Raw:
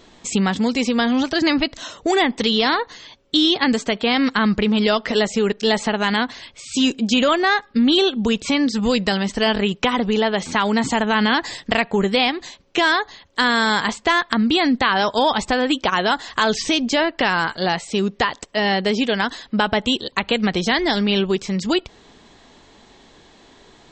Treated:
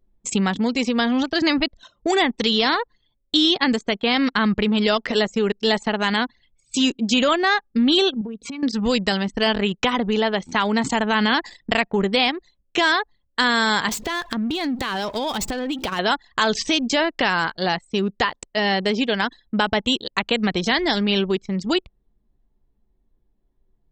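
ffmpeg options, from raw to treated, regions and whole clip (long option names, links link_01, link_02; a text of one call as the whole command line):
ffmpeg -i in.wav -filter_complex "[0:a]asettb=1/sr,asplit=3[link_01][link_02][link_03];[link_01]atrim=end=8.214[link_04];[link_02]atrim=start=8.21:end=8.63,asetpts=PTS-STARTPTS,afade=type=in:duration=0.004:curve=qsin,afade=type=out:start_time=0.416:duration=0.004:curve=qsin,highpass=66,aecho=1:1:4.3:0.63,atrim=end_sample=18522,acompressor=threshold=-25dB:ratio=12:attack=3.2:release=140:knee=1:detection=peak[link_05];[link_03]atrim=start=8.626[link_06];[link_04][link_05]acrossfade=duration=0.004:curve1=hsin:curve2=qsin[link_07];[link_07][link_06]acrossfade=duration=0.004:curve1=qsin:curve2=hsin,asettb=1/sr,asplit=3[link_08][link_09][link_10];[link_08]atrim=end=13.884[link_11];[link_09]atrim=start=13.88:end=15.99,asetpts=PTS-STARTPTS,afade=type=in:duration=0.004:curve=qsin,afade=type=out:start_time=2.106:duration=0.004:curve=qsin,aeval=exprs='val(0)+0.5*0.0596*sgn(val(0))':channel_layout=same,equalizer=frequency=1200:width=0.53:gain=-5,acompressor=threshold=-19dB:ratio=6:attack=3.2:release=140:knee=1:detection=peak[link_12];[link_10]atrim=start=15.986[link_13];[link_11][link_12]acrossfade=duration=0.004:curve1=hsin:curve2=qsin[link_14];[link_14][link_13]acrossfade=duration=0.004:curve1=qsin:curve2=hsin,anlmdn=158,lowpass=frequency=2700:poles=1,aemphasis=mode=production:type=75fm,volume=-1dB" out.wav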